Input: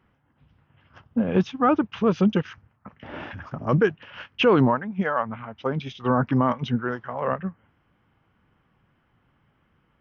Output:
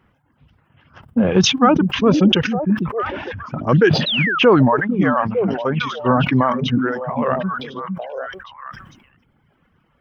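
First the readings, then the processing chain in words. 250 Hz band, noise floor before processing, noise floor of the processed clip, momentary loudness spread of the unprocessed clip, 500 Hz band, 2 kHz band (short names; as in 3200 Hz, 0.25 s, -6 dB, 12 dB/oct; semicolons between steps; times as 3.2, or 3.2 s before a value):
+7.0 dB, -68 dBFS, -62 dBFS, 17 LU, +6.5 dB, +10.0 dB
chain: on a send: delay with a stepping band-pass 0.453 s, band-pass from 210 Hz, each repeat 1.4 oct, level -3 dB; on the sum: reverb removal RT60 1.1 s; painted sound fall, 4.06–4.39, 1200–4100 Hz -26 dBFS; sustainer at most 59 dB/s; gain +6 dB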